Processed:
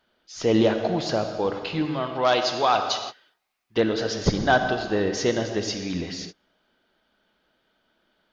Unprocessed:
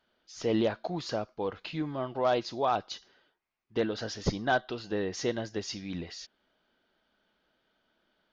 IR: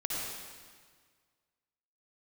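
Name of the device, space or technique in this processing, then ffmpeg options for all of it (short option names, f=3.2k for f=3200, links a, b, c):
keyed gated reverb: -filter_complex "[0:a]asettb=1/sr,asplit=3[a][b][c];[a]atrim=end=1.854[d];[b]atrim=start=1.85:end=3.78,asetpts=PTS-STARTPTS,afade=t=in:d=0.004:c=qsin,afade=t=out:st=1.926:d=0.004:c=qsin,tiltshelf=f=970:g=-6[e];[c]atrim=start=3.776[f];[d][e]acrossfade=d=0.004:c1=hsin:c2=qsin[g];[g][f]acrossfade=d=0.004:c1=qsin:c2=hsin,asplit=3[h][i][j];[1:a]atrim=start_sample=2205[k];[i][k]afir=irnorm=-1:irlink=0[l];[j]apad=whole_len=367150[m];[l][m]sidechaingate=range=-35dB:threshold=-51dB:ratio=16:detection=peak,volume=-8dB[n];[h][n]amix=inputs=2:normalize=0,volume=5dB"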